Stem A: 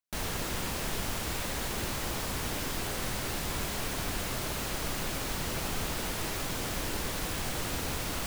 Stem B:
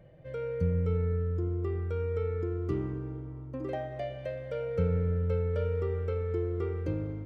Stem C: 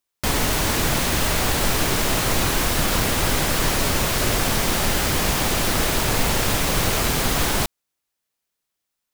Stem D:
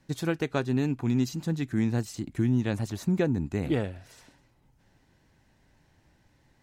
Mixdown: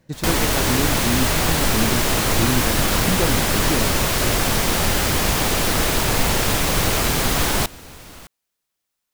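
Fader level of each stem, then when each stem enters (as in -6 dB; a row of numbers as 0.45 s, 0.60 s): -6.5 dB, -7.0 dB, +1.5 dB, +2.0 dB; 0.00 s, 0.00 s, 0.00 s, 0.00 s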